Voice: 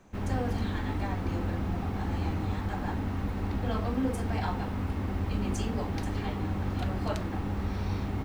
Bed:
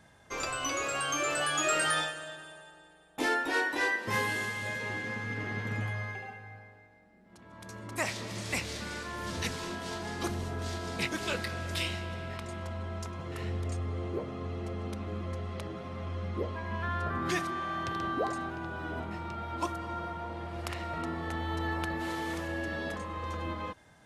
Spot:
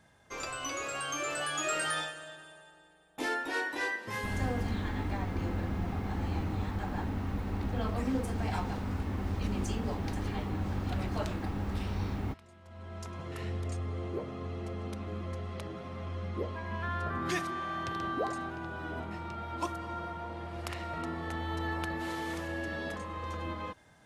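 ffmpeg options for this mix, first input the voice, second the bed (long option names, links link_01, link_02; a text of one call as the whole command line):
ffmpeg -i stem1.wav -i stem2.wav -filter_complex "[0:a]adelay=4100,volume=-2.5dB[link_01];[1:a]volume=11.5dB,afade=type=out:start_time=3.85:duration=0.89:silence=0.223872,afade=type=in:start_time=12.64:duration=0.52:silence=0.16788[link_02];[link_01][link_02]amix=inputs=2:normalize=0" out.wav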